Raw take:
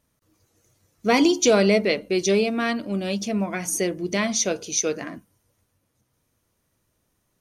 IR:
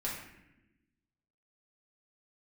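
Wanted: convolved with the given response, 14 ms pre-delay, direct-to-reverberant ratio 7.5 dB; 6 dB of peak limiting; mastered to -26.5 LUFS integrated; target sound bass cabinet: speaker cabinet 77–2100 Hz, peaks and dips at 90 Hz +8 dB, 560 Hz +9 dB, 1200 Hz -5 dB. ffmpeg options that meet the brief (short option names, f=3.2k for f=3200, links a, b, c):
-filter_complex "[0:a]alimiter=limit=-13dB:level=0:latency=1,asplit=2[a][b];[1:a]atrim=start_sample=2205,adelay=14[c];[b][c]afir=irnorm=-1:irlink=0,volume=-11dB[d];[a][d]amix=inputs=2:normalize=0,highpass=f=77:w=0.5412,highpass=f=77:w=1.3066,equalizer=f=90:t=q:w=4:g=8,equalizer=f=560:t=q:w=4:g=9,equalizer=f=1.2k:t=q:w=4:g=-5,lowpass=f=2.1k:w=0.5412,lowpass=f=2.1k:w=1.3066,volume=-4.5dB"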